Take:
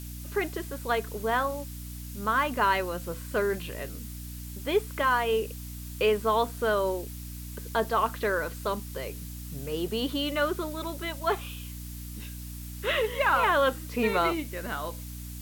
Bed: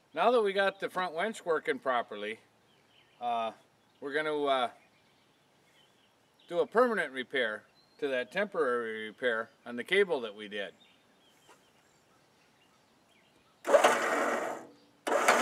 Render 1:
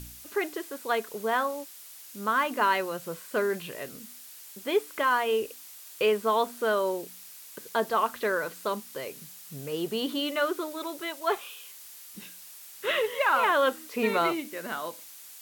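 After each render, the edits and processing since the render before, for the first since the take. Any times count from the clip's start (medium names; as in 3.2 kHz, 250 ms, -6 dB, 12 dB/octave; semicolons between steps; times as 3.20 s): de-hum 60 Hz, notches 5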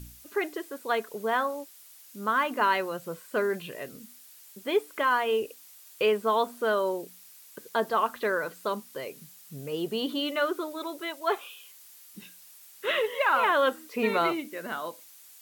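noise reduction 6 dB, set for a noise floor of -47 dBFS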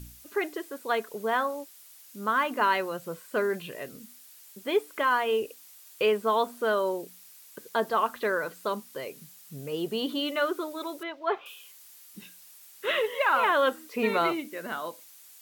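11.03–11.46 s: distance through air 250 m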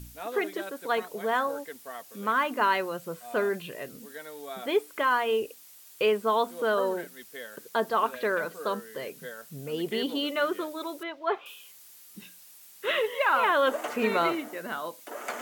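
add bed -11 dB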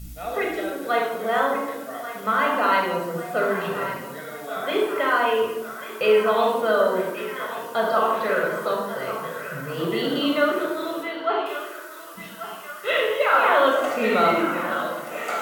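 band-passed feedback delay 1137 ms, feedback 71%, band-pass 1.6 kHz, level -9.5 dB; simulated room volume 3700 m³, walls furnished, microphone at 6.6 m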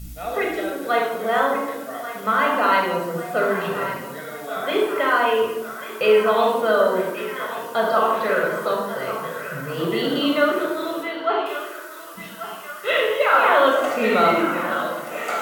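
trim +2 dB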